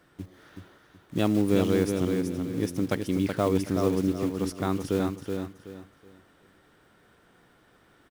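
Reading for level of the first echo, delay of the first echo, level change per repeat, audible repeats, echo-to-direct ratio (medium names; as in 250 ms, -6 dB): -5.5 dB, 375 ms, -11.0 dB, 3, -5.0 dB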